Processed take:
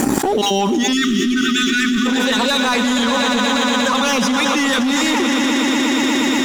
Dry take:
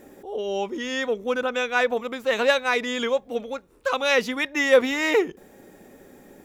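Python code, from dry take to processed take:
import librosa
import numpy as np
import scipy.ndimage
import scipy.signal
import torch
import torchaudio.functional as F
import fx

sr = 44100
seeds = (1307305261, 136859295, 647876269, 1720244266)

p1 = fx.spec_dropout(x, sr, seeds[0], share_pct=20)
p2 = fx.graphic_eq(p1, sr, hz=(125, 250, 500, 1000, 2000, 4000, 8000), db=(4, 12, -10, 9, -4, 8, 11))
p3 = p2 + fx.echo_swell(p2, sr, ms=119, loudest=5, wet_db=-11.5, dry=0)
p4 = fx.leveller(p3, sr, passes=2)
p5 = fx.spec_erase(p4, sr, start_s=0.93, length_s=1.13, low_hz=400.0, high_hz=1100.0)
p6 = fx.env_flatten(p5, sr, amount_pct=100)
y = p6 * 10.0 ** (-6.5 / 20.0)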